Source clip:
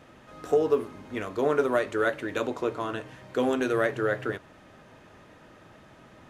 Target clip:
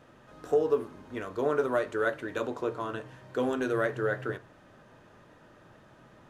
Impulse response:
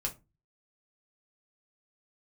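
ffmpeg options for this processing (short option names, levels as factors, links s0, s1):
-filter_complex "[0:a]asplit=2[s0][s1];[s1]highshelf=f=2700:t=q:w=3:g=-13[s2];[1:a]atrim=start_sample=2205,lowpass=4500[s3];[s2][s3]afir=irnorm=-1:irlink=0,volume=0.282[s4];[s0][s4]amix=inputs=2:normalize=0,volume=0.531"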